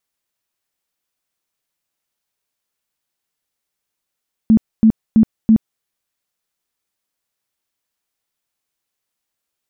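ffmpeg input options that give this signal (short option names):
-f lavfi -i "aevalsrc='0.501*sin(2*PI*221*mod(t,0.33))*lt(mod(t,0.33),16/221)':d=1.32:s=44100"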